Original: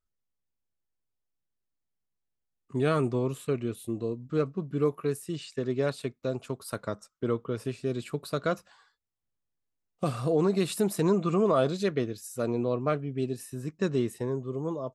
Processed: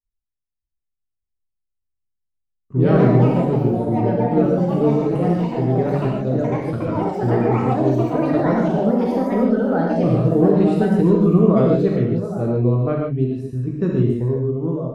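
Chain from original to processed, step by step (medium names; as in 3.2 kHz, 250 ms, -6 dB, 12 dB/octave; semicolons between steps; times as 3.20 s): tilt EQ -4 dB/octave; expander -49 dBFS; ever faster or slower copies 596 ms, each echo +4 st, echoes 3; treble shelf 8.9 kHz -10 dB; gated-style reverb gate 180 ms flat, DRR -2 dB; trim -1 dB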